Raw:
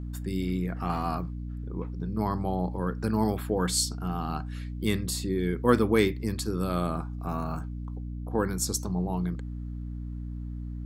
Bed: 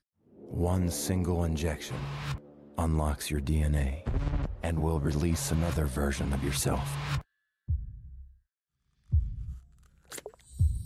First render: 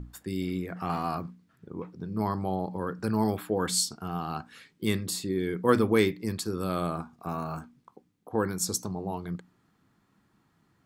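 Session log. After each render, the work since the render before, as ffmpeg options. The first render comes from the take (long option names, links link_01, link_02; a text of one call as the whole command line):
ffmpeg -i in.wav -af "bandreject=frequency=60:width_type=h:width=6,bandreject=frequency=120:width_type=h:width=6,bandreject=frequency=180:width_type=h:width=6,bandreject=frequency=240:width_type=h:width=6,bandreject=frequency=300:width_type=h:width=6" out.wav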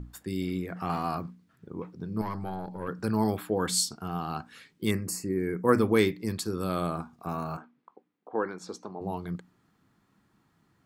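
ffmpeg -i in.wav -filter_complex "[0:a]asettb=1/sr,asplit=3[link_01][link_02][link_03];[link_01]atrim=end=2.214[link_04];[link_02]atrim=start=2.21:end=2.88,asetpts=PTS-STARTPTS,afade=type=in:duration=0.004:curve=qsin,afade=type=out:start_time=0.666:duration=0.004:curve=qsin,aeval=exprs='(tanh(14.1*val(0)+0.6)-tanh(0.6))/14.1':channel_layout=same[link_05];[link_03]atrim=start=2.876[link_06];[link_04][link_05]acrossfade=duration=0.004:curve1=hsin:curve2=qsin[link_07];[link_07][link_06]acrossfade=duration=0.004:curve1=qsin:curve2=hsin,asettb=1/sr,asplit=3[link_08][link_09][link_10];[link_08]atrim=end=4.914[link_11];[link_09]atrim=start=4.91:end=5.79,asetpts=PTS-STARTPTS,afade=type=in:duration=0.004:curve=qsin,afade=type=out:start_time=0.876:duration=0.004:curve=qsin,asuperstop=centerf=3500:order=4:qfactor=1.2[link_12];[link_10]atrim=start=5.786[link_13];[link_11][link_12]acrossfade=duration=0.004:curve1=hsin:curve2=qsin[link_14];[link_14][link_13]acrossfade=duration=0.004:curve1=qsin:curve2=hsin,asplit=3[link_15][link_16][link_17];[link_15]afade=type=out:start_time=7.56:duration=0.02[link_18];[link_16]highpass=330,lowpass=2500,afade=type=in:start_time=7.56:duration=0.02,afade=type=out:start_time=9:duration=0.02[link_19];[link_17]afade=type=in:start_time=9:duration=0.02[link_20];[link_18][link_19][link_20]amix=inputs=3:normalize=0" out.wav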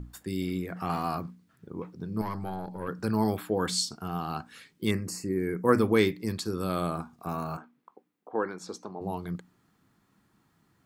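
ffmpeg -i in.wav -filter_complex "[0:a]acrossover=split=6600[link_01][link_02];[link_02]acompressor=threshold=-49dB:ratio=4:attack=1:release=60[link_03];[link_01][link_03]amix=inputs=2:normalize=0,highshelf=frequency=7000:gain=5.5" out.wav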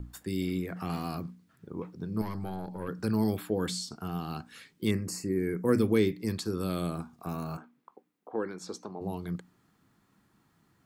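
ffmpeg -i in.wav -filter_complex "[0:a]acrossover=split=520|1900[link_01][link_02][link_03];[link_02]acompressor=threshold=-43dB:ratio=6[link_04];[link_03]alimiter=level_in=2.5dB:limit=-24dB:level=0:latency=1:release=252,volume=-2.5dB[link_05];[link_01][link_04][link_05]amix=inputs=3:normalize=0" out.wav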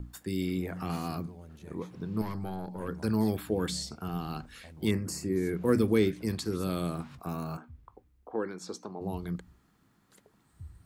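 ffmpeg -i in.wav -i bed.wav -filter_complex "[1:a]volume=-20dB[link_01];[0:a][link_01]amix=inputs=2:normalize=0" out.wav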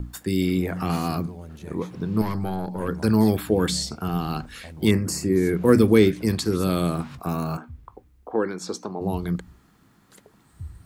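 ffmpeg -i in.wav -af "volume=9dB" out.wav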